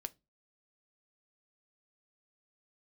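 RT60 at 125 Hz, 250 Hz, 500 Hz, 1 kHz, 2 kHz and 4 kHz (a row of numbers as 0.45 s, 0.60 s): 0.35 s, 0.35 s, 0.25 s, 0.20 s, 0.20 s, 0.20 s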